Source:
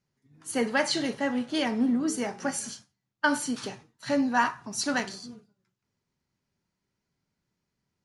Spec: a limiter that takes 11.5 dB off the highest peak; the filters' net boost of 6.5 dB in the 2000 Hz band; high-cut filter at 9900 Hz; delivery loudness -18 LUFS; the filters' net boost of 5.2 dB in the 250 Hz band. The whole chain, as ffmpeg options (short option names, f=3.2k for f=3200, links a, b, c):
-af "lowpass=9.9k,equalizer=f=250:t=o:g=5.5,equalizer=f=2k:t=o:g=8.5,volume=10.5dB,alimiter=limit=-8.5dB:level=0:latency=1"